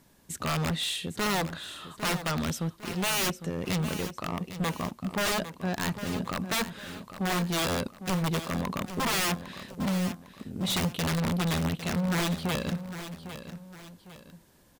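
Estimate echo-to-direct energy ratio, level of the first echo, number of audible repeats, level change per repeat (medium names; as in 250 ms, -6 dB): -11.0 dB, -11.5 dB, 2, -8.0 dB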